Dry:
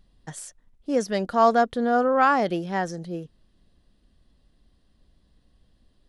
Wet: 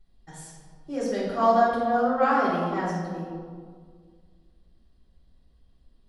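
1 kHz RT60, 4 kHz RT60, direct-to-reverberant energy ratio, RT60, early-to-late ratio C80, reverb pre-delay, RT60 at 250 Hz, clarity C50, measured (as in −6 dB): 1.7 s, 1.0 s, −9.0 dB, 1.8 s, 2.0 dB, 3 ms, 2.2 s, −0.5 dB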